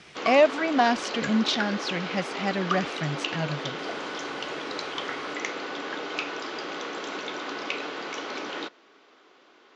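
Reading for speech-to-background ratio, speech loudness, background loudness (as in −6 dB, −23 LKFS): 6.5 dB, −26.0 LKFS, −32.5 LKFS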